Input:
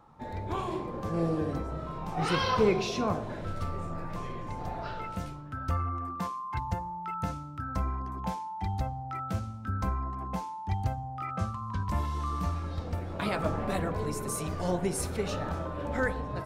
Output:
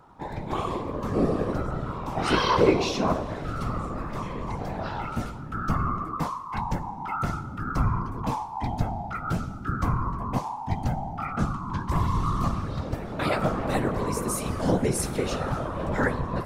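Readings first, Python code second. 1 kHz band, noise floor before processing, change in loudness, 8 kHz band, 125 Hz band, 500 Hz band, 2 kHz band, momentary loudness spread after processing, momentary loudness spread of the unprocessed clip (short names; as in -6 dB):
+5.0 dB, -40 dBFS, +5.0 dB, +5.0 dB, +4.5 dB, +4.5 dB, +4.5 dB, 8 LU, 8 LU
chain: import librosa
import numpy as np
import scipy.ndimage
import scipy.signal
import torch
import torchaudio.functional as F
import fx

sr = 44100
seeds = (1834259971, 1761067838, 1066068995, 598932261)

y = fx.chorus_voices(x, sr, voices=2, hz=0.53, base_ms=16, depth_ms=1.7, mix_pct=30)
y = fx.whisperise(y, sr, seeds[0])
y = fx.rev_schroeder(y, sr, rt60_s=2.1, comb_ms=28, drr_db=18.5)
y = F.gain(torch.from_numpy(y), 7.0).numpy()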